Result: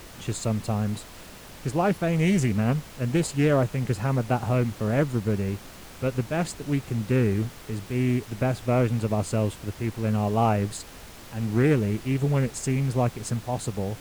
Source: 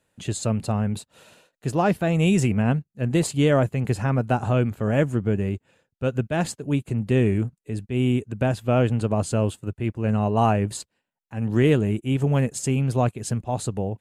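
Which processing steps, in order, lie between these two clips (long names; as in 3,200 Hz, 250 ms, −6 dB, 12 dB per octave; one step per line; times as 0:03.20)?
background noise pink −41 dBFS
highs frequency-modulated by the lows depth 0.22 ms
level −2.5 dB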